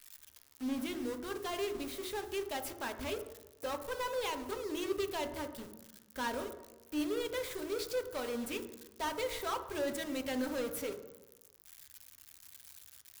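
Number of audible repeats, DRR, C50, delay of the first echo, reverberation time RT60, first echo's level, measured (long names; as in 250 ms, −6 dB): no echo audible, 6.0 dB, 9.5 dB, no echo audible, 1.0 s, no echo audible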